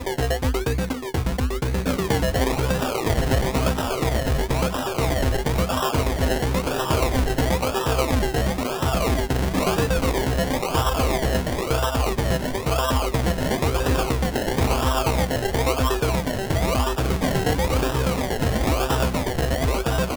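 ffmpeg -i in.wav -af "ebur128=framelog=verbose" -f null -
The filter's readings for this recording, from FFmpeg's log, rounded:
Integrated loudness:
  I:         -22.8 LUFS
  Threshold: -32.8 LUFS
Loudness range:
  LRA:         0.6 LU
  Threshold: -42.7 LUFS
  LRA low:   -23.0 LUFS
  LRA high:  -22.5 LUFS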